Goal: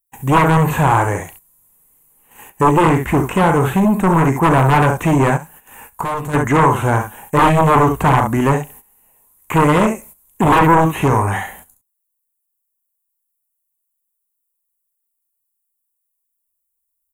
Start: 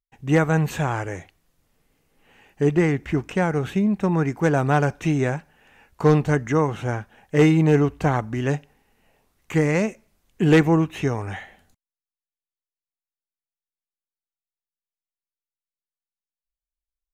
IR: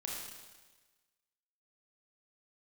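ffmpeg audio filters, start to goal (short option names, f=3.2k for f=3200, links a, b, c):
-filter_complex "[0:a]asplit=2[a][b];[b]aecho=0:1:37|68:0.299|0.335[c];[a][c]amix=inputs=2:normalize=0,aeval=exprs='0.531*sin(PI/2*3.55*val(0)/0.531)':c=same,asplit=3[d][e][f];[d]afade=t=out:st=5.36:d=0.02[g];[e]acompressor=threshold=-25dB:ratio=2.5,afade=t=in:st=5.36:d=0.02,afade=t=out:st=6.33:d=0.02[h];[f]afade=t=in:st=6.33:d=0.02[i];[g][h][i]amix=inputs=3:normalize=0,equalizer=f=1k:w=2.9:g=11,agate=range=-14dB:threshold=-36dB:ratio=16:detection=peak,aexciter=amount=13.8:drive=6.6:freq=7.5k,acrossover=split=3000[j][k];[k]acompressor=threshold=-31dB:ratio=4:attack=1:release=60[l];[j][l]amix=inputs=2:normalize=0,volume=-4.5dB"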